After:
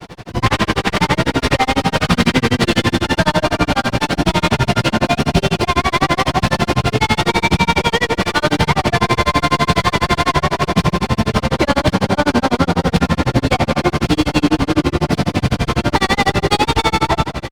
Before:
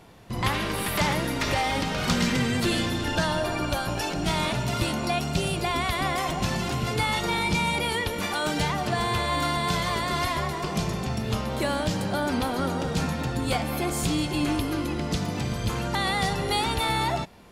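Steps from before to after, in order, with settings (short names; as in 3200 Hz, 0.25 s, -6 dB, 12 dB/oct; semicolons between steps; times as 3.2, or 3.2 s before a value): CVSD 32 kbps; harmoniser +7 st -15 dB; diffused feedback echo 1.662 s, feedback 60%, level -11 dB; upward compressor, threshold -39 dBFS; on a send: echo 0.194 s -12.5 dB; on the sum: grains 75 ms, grains 12/s, spray 12 ms, pitch spread up and down by 0 st; maximiser +17 dB; running maximum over 3 samples; gain -1 dB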